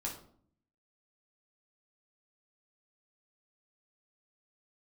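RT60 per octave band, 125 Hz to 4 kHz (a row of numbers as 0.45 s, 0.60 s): 0.90 s, 0.85 s, 0.60 s, 0.55 s, 0.40 s, 0.35 s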